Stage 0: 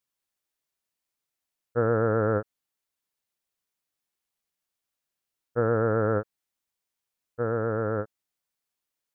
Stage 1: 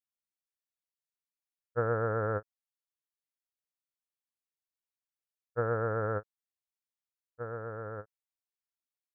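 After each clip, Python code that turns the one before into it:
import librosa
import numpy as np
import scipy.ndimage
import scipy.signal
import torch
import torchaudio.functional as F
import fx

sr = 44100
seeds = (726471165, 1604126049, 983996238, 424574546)

y = fx.peak_eq(x, sr, hz=250.0, db=-9.0, octaves=1.7)
y = fx.upward_expand(y, sr, threshold_db=-35.0, expansion=2.5)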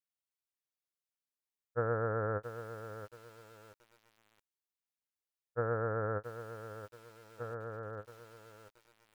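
y = fx.echo_crushed(x, sr, ms=675, feedback_pct=35, bits=8, wet_db=-10.5)
y = F.gain(torch.from_numpy(y), -3.0).numpy()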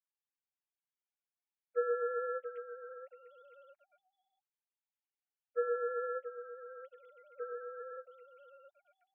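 y = fx.sine_speech(x, sr)
y = y + 0.32 * np.pad(y, (int(7.0 * sr / 1000.0), 0))[:len(y)]
y = F.gain(torch.from_numpy(y), 1.0).numpy()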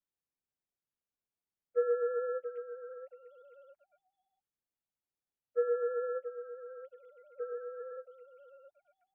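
y = fx.tilt_shelf(x, sr, db=7.5, hz=810.0)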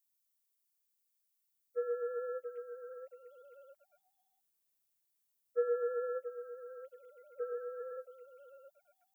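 y = fx.rider(x, sr, range_db=4, speed_s=2.0)
y = fx.dmg_noise_colour(y, sr, seeds[0], colour='violet', level_db=-77.0)
y = F.gain(torch.from_numpy(y), -4.0).numpy()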